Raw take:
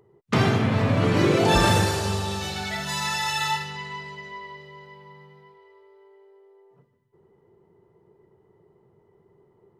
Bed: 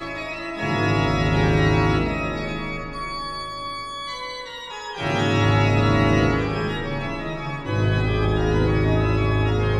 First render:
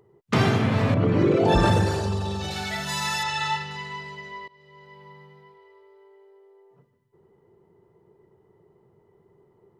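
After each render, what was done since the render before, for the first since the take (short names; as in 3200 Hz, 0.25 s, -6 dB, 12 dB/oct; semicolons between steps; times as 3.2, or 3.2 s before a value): 0.94–2.51 formant sharpening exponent 1.5; 3.23–3.71 air absorption 85 m; 4.48–5.05 fade in linear, from -21.5 dB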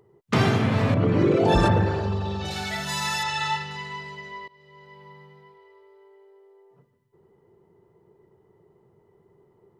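1.67–2.44 LPF 2200 Hz -> 4300 Hz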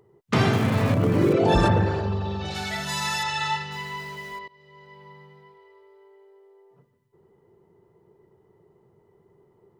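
0.53–1.33 switching dead time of 0.059 ms; 2.01–2.55 air absorption 70 m; 3.72–4.39 zero-crossing step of -43 dBFS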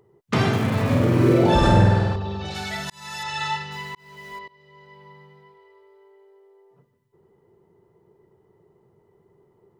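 0.86–2.16 flutter echo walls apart 8.4 m, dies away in 1.2 s; 2.9–3.42 fade in; 3.95–4.37 fade in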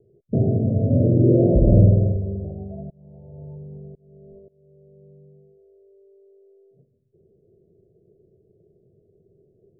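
steep low-pass 670 Hz 96 dB/oct; low shelf 88 Hz +7.5 dB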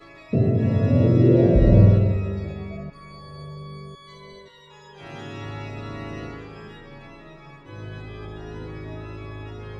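add bed -16 dB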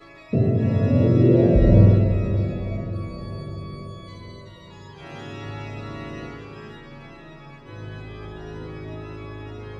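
diffused feedback echo 0.538 s, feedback 56%, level -12.5 dB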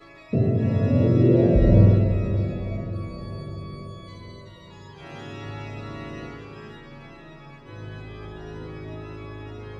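gain -1.5 dB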